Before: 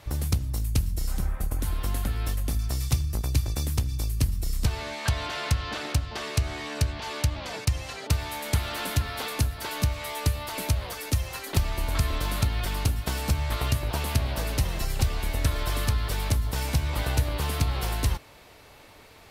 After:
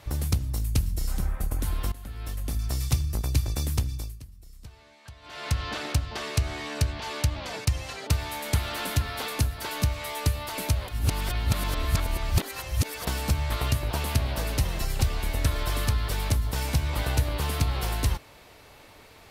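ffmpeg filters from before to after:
-filter_complex "[0:a]asplit=6[a][b][c][d][e][f];[a]atrim=end=1.92,asetpts=PTS-STARTPTS,afade=t=out:st=1.916:d=0.004:c=hsin:silence=0.11885[g];[b]atrim=start=1.92:end=4.21,asetpts=PTS-STARTPTS,afade=t=in:d=0.81:silence=0.11885,afade=t=out:st=1.9:d=0.39:silence=0.0944061[h];[c]atrim=start=4.21:end=5.22,asetpts=PTS-STARTPTS,volume=-20.5dB[i];[d]atrim=start=5.22:end=10.882,asetpts=PTS-STARTPTS,afade=t=in:d=0.39:silence=0.0944061[j];[e]atrim=start=10.878:end=13.072,asetpts=PTS-STARTPTS,areverse[k];[f]atrim=start=13.068[l];[g][h][i][j]concat=n=4:v=0:a=1[m];[m][k]acrossfade=d=0.004:c1=hsin:c2=hsin[n];[n][l]acrossfade=d=0.004:c1=hsin:c2=hsin"

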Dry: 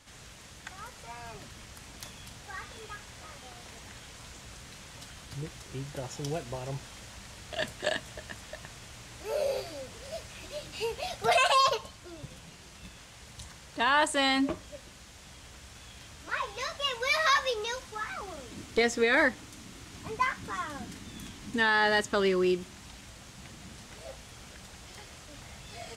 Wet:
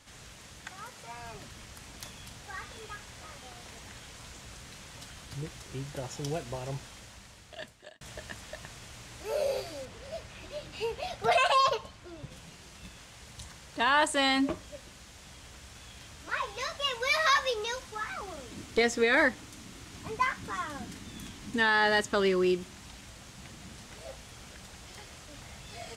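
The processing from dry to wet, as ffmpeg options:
-filter_complex "[0:a]asettb=1/sr,asplit=3[a][b][c];[a]atrim=end=0.684[d];[b]atrim=start=0.68:end=1.13,asetpts=PTS-STARTPTS,afade=t=in:d=0.004:c=qsin,afade=t=out:st=0.446:d=0.004:c=qsin,highpass=95[e];[c]atrim=start=1.126[f];[d][e]acrossfade=d=0.004:c1=hsin:c2=qsin[g];[g][f]acrossfade=d=0.004:c1=qsin:c2=hsin,asettb=1/sr,asplit=3[h][i][j];[h]atrim=end=9.854[k];[i]atrim=start=9.85:end=12.32,asetpts=PTS-STARTPTS,afade=t=in:d=0.004:c=qsin,afade=t=out:st=2.466:d=0.004:c=qsin,highshelf=f=5k:g=-8.5[l];[j]atrim=start=12.316[m];[k][l]acrossfade=d=0.004:c1=hsin:c2=qsin[n];[n][m]acrossfade=d=0.004:c1=qsin:c2=hsin,asplit=2[o][p];[o]atrim=end=8.01,asetpts=PTS-STARTPTS,afade=t=out:st=6.71:d=1.3[q];[p]atrim=start=8.01,asetpts=PTS-STARTPTS,afade=t=in:d=0.004:c=hsin[r];[q][r]concat=n=2:v=0:a=1"

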